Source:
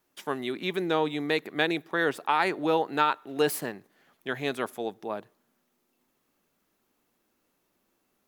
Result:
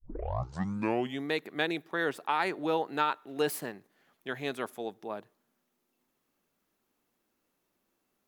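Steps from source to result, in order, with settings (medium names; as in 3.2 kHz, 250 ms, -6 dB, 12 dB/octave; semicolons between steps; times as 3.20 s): tape start-up on the opening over 1.26 s; trim -4.5 dB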